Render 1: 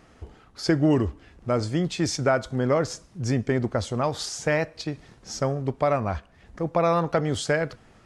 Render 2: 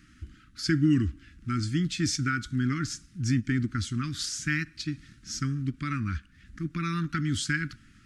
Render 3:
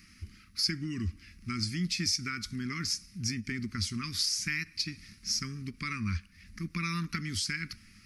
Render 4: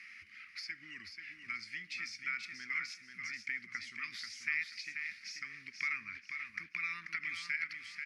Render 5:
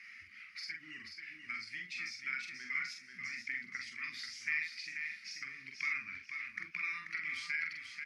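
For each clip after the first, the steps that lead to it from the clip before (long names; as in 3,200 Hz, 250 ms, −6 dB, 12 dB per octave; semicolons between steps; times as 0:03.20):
elliptic band-stop filter 300–1,400 Hz, stop band 40 dB; every ending faded ahead of time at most 490 dB per second
high-shelf EQ 2,500 Hz +10.5 dB; downward compressor 3 to 1, threshold −27 dBFS, peak gain reduction 7.5 dB; EQ curve with evenly spaced ripples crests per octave 0.86, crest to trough 11 dB; level −3.5 dB
downward compressor 4 to 1, threshold −42 dBFS, peak gain reduction 15 dB; resonant band-pass 2,100 Hz, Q 3.6; on a send: repeating echo 486 ms, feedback 28%, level −6.5 dB; on the sum: level +12.5 dB
spectral magnitudes quantised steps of 15 dB; double-tracking delay 45 ms −4 dB; level −1 dB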